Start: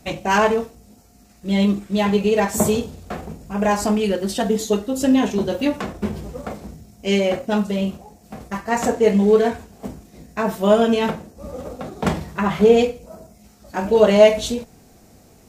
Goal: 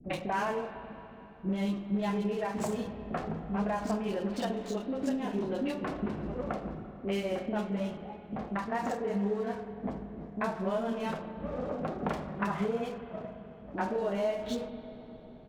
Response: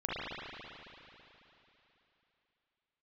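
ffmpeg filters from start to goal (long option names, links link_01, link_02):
-filter_complex "[0:a]adynamicsmooth=sensitivity=8:basefreq=560,equalizer=frequency=69:width_type=o:width=1.4:gain=-14,acompressor=threshold=-30dB:ratio=6,highshelf=frequency=4500:gain=-9.5,acrossover=split=410|2900[link_01][link_02][link_03];[link_02]adelay=40[link_04];[link_03]adelay=70[link_05];[link_01][link_04][link_05]amix=inputs=3:normalize=0,asplit=2[link_06][link_07];[1:a]atrim=start_sample=2205,lowshelf=frequency=170:gain=8.5[link_08];[link_07][link_08]afir=irnorm=-1:irlink=0,volume=-15dB[link_09];[link_06][link_09]amix=inputs=2:normalize=0"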